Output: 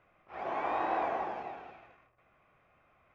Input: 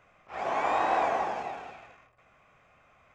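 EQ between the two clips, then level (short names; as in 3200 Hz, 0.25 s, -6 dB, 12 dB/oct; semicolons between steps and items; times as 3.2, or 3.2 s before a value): air absorption 190 m; bell 340 Hz +6 dB 0.28 oct; -5.0 dB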